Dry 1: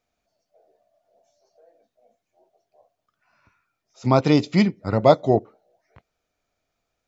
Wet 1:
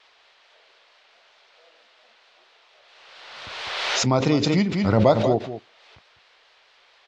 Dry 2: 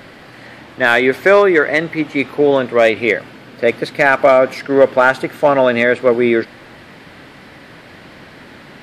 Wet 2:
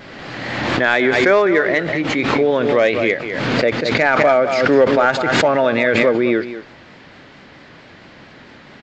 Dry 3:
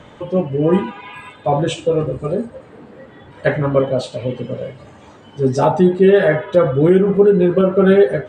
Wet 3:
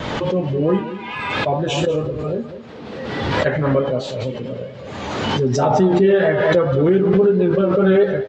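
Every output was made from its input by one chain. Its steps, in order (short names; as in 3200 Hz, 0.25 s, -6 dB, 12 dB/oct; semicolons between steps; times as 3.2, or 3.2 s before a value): downsampling 16000 Hz; band noise 450–4200 Hz -54 dBFS; on a send: echo 0.201 s -12.5 dB; on the sum: vibrato 4.5 Hz 44 cents; backwards sustainer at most 29 dB/s; gain -4 dB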